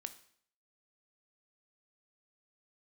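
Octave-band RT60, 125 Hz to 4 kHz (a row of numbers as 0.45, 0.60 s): 0.60, 0.60, 0.60, 0.60, 0.60, 0.55 s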